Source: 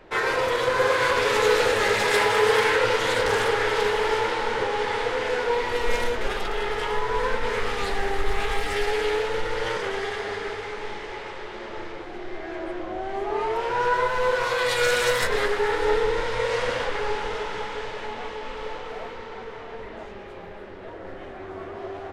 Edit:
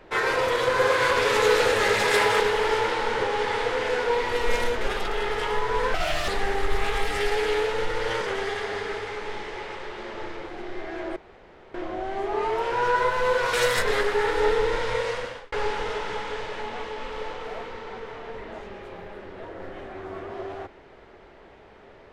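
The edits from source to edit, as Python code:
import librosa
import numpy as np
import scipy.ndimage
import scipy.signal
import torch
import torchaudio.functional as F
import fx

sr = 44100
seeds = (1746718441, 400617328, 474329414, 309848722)

y = fx.edit(x, sr, fx.cut(start_s=2.4, length_s=1.4),
    fx.speed_span(start_s=7.34, length_s=0.5, speed=1.46),
    fx.insert_room_tone(at_s=12.72, length_s=0.58),
    fx.cut(start_s=14.51, length_s=0.47),
    fx.fade_out_span(start_s=16.35, length_s=0.62), tone=tone)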